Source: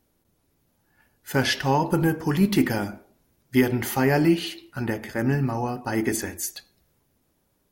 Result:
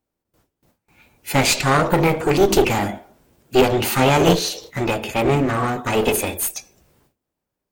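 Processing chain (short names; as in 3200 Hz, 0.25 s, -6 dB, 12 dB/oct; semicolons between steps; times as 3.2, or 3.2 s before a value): formant shift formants +6 st; gate with hold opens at -57 dBFS; one-sided clip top -30 dBFS; gain +9 dB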